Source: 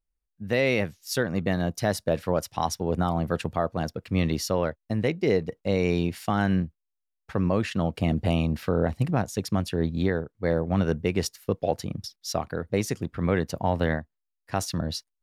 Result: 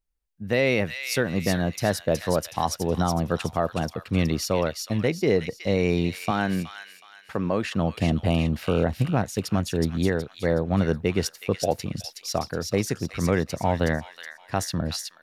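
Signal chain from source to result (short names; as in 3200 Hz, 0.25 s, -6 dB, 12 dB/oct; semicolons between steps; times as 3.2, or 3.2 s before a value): 6.31–7.75 HPF 230 Hz 6 dB/oct; thin delay 0.37 s, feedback 38%, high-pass 2200 Hz, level -3 dB; gain +1.5 dB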